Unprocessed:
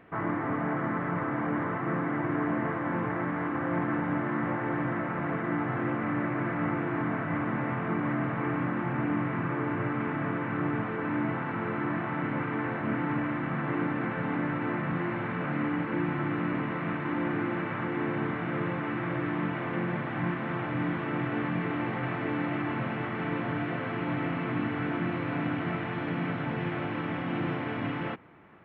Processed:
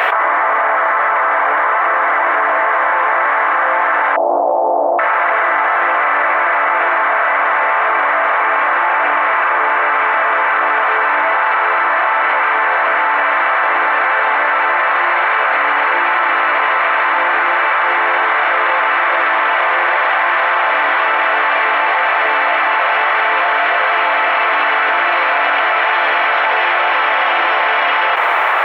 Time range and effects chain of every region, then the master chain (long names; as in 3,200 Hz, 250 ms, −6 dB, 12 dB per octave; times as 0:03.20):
0:04.16–0:04.99: Butterworth low-pass 780 Hz 48 dB per octave + highs frequency-modulated by the lows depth 0.14 ms
whole clip: inverse Chebyshev high-pass filter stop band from 190 Hz, stop band 60 dB; boost into a limiter +34 dB; envelope flattener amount 100%; level −6.5 dB